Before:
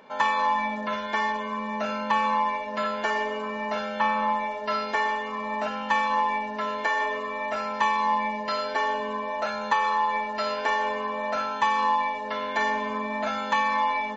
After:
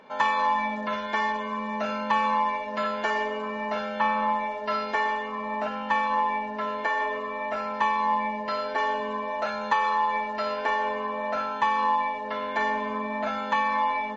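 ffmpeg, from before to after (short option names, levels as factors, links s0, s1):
-af "asetnsamples=n=441:p=0,asendcmd='3.28 lowpass f 4100;5.26 lowpass f 2500;8.78 lowpass f 4800;10.36 lowpass f 2700',lowpass=f=6300:p=1"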